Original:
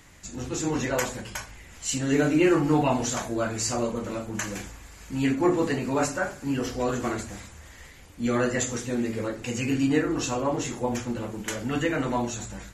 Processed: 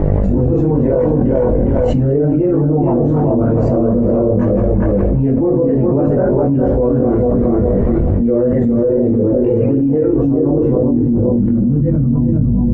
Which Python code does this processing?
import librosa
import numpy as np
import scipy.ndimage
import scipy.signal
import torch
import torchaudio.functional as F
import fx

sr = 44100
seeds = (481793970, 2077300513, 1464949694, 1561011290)

p1 = fx.wow_flutter(x, sr, seeds[0], rate_hz=2.1, depth_cents=28.0)
p2 = fx.dmg_buzz(p1, sr, base_hz=50.0, harmonics=17, level_db=-55.0, tilt_db=-3, odd_only=False)
p3 = fx.filter_sweep_lowpass(p2, sr, from_hz=480.0, to_hz=190.0, start_s=10.0, end_s=11.99, q=1.6)
p4 = p3 + fx.echo_tape(p3, sr, ms=412, feedback_pct=27, wet_db=-3, lp_hz=1400.0, drive_db=4.0, wow_cents=17, dry=0)
p5 = fx.chorus_voices(p4, sr, voices=6, hz=0.85, base_ms=21, depth_ms=1.1, mix_pct=55)
p6 = fx.env_flatten(p5, sr, amount_pct=100)
y = F.gain(torch.from_numpy(p6), 3.0).numpy()